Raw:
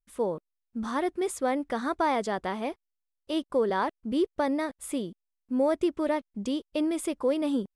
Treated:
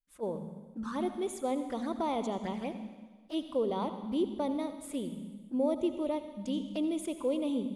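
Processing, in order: envelope flanger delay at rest 7.1 ms, full sweep at -26.5 dBFS; on a send at -8.5 dB: resonant low shelf 270 Hz +7 dB, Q 3 + reverb RT60 1.4 s, pre-delay 69 ms; on the sum: attack slew limiter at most 470 dB/s; gain -4 dB

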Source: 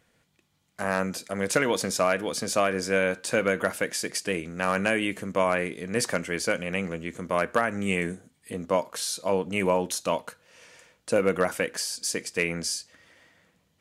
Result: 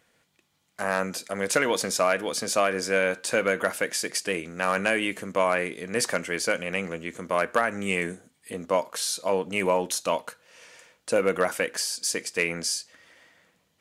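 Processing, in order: low shelf 210 Hz -9.5 dB; in parallel at -11 dB: soft clip -18.5 dBFS, distortion -14 dB

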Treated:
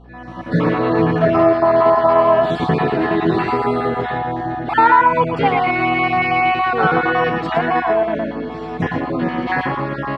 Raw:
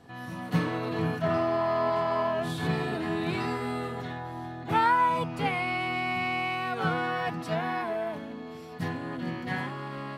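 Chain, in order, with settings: random spectral dropouts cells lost 28%; tone controls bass -8 dB, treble 0 dB; on a send: echo 0.115 s -6 dB; on the sum: AGC gain up to 11 dB; tape spacing loss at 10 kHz 28 dB; hum 60 Hz, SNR 29 dB; in parallel at -3 dB: compressor, threshold -26 dBFS, peak gain reduction 12.5 dB; on the sum: gain +4 dB

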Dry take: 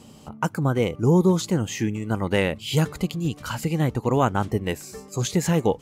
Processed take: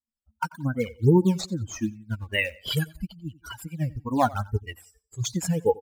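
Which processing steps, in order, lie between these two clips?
per-bin expansion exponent 3; 2.24–2.99 tilt +1.5 dB/oct; in parallel at -11.5 dB: decimation with a swept rate 10×, swing 160% 2.4 Hz; on the sum: feedback echo 89 ms, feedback 33%, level -21.5 dB; cascading flanger falling 1.7 Hz; gain +6.5 dB

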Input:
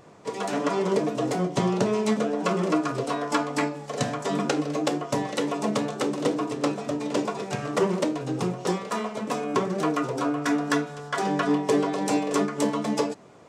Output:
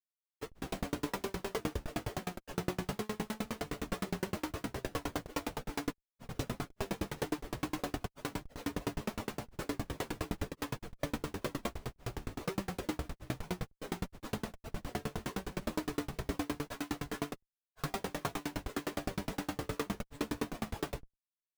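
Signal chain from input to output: Schmitt trigger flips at -25.5 dBFS; low shelf 170 Hz -4.5 dB; plain phase-vocoder stretch 1.6×; dB-ramp tremolo decaying 9.7 Hz, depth 36 dB; gain +1.5 dB

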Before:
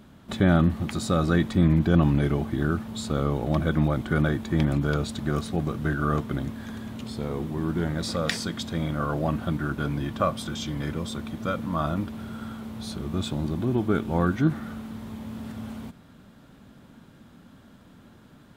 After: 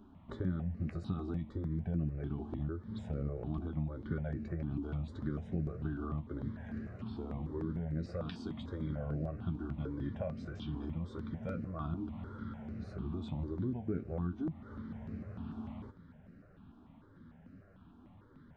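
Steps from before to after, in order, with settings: flange 1.7 Hz, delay 9.7 ms, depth 3.4 ms, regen +45%; dynamic EQ 1300 Hz, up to -6 dB, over -47 dBFS, Q 0.99; compressor 6:1, threshold -31 dBFS, peak gain reduction 14.5 dB; tape spacing loss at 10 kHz 35 dB; step phaser 6.7 Hz 540–3400 Hz; gain +1.5 dB

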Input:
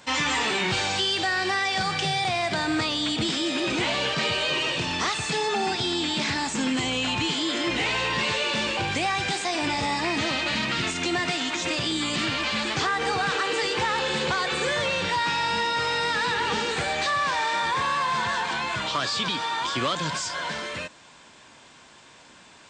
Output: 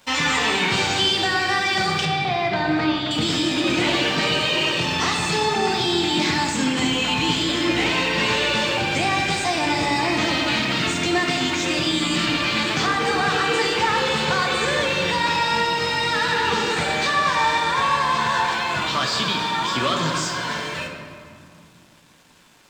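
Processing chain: crossover distortion -51 dBFS; 2.05–3.11 air absorption 200 m; on a send: reverb RT60 2.2 s, pre-delay 5 ms, DRR 1 dB; on the sum: gain +2.5 dB

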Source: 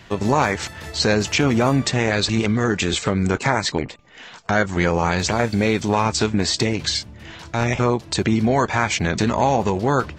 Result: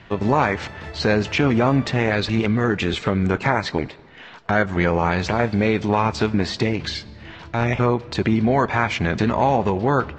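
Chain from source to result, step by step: LPF 3200 Hz 12 dB/oct; on a send: reverb RT60 1.7 s, pre-delay 5 ms, DRR 20.5 dB

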